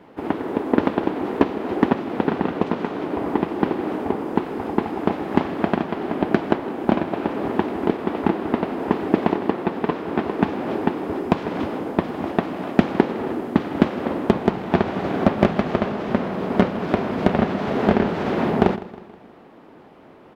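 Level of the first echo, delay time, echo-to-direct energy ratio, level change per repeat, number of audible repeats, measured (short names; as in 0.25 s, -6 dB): -17.5 dB, 0.159 s, -16.5 dB, -6.5 dB, 3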